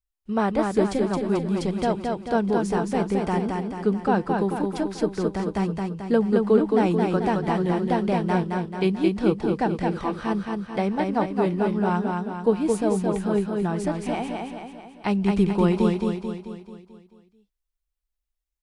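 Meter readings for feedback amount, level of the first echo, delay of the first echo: 52%, −3.5 dB, 219 ms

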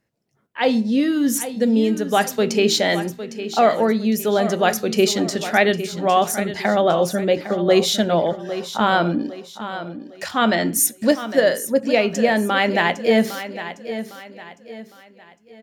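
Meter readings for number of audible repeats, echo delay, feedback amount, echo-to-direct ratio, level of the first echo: 3, 807 ms, 37%, −11.5 dB, −12.0 dB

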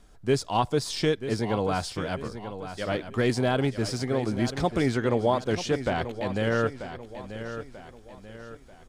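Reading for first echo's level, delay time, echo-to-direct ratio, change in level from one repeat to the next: −11.0 dB, 938 ms, −10.0 dB, −7.5 dB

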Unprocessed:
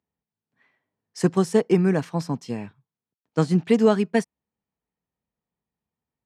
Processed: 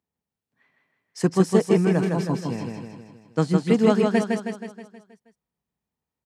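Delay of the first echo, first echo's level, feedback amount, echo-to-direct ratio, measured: 159 ms, −3.5 dB, 53%, −2.0 dB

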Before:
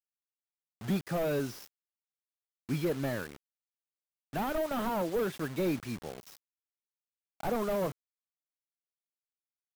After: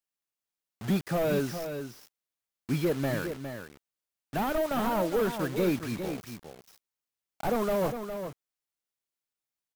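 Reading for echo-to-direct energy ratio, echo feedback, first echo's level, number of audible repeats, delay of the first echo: −8.5 dB, repeats not evenly spaced, −8.5 dB, 1, 409 ms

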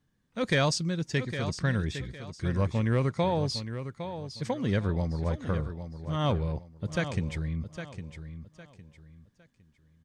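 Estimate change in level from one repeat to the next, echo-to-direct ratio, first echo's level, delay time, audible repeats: −10.5 dB, −9.5 dB, −10.0 dB, 808 ms, 3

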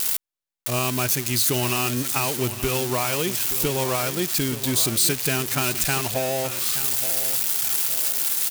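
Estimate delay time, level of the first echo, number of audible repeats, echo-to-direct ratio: 875 ms, −12.5 dB, 2, −12.0 dB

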